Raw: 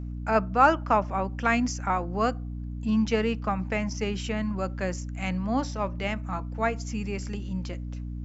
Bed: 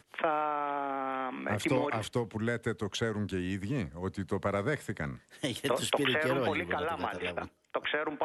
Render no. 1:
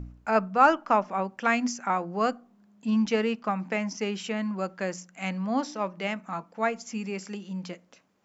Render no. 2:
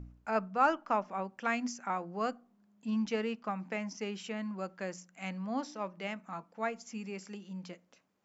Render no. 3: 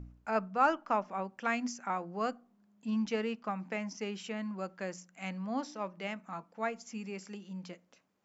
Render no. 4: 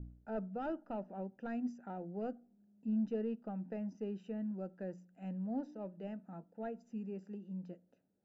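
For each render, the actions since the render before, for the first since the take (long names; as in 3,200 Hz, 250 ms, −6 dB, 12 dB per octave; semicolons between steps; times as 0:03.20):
hum removal 60 Hz, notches 5
level −8 dB
no processing that can be heard
soft clipping −25.5 dBFS, distortion −12 dB; moving average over 40 samples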